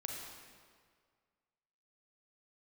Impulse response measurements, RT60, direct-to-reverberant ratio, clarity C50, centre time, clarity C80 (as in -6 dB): 1.9 s, -0.5 dB, 1.0 dB, 86 ms, 2.5 dB